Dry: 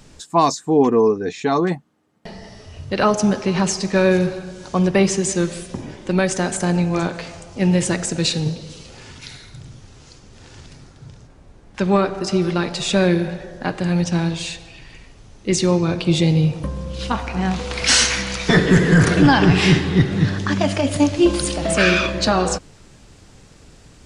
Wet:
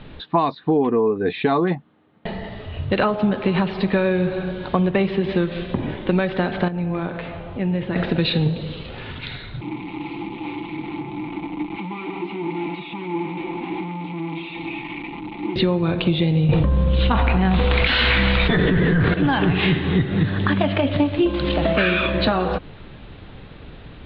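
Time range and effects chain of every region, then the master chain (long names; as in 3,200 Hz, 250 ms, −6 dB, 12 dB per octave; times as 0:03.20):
0:06.68–0:07.96: downward compressor 2 to 1, threshold −35 dBFS + high-frequency loss of the air 230 metres
0:09.61–0:15.56: sign of each sample alone + formant filter u + comb filter 5.9 ms, depth 58%
0:16.49–0:19.14: low-shelf EQ 67 Hz +11 dB + envelope flattener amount 100%
whole clip: Butterworth low-pass 3,900 Hz 72 dB per octave; downward compressor, threshold −23 dBFS; level +7 dB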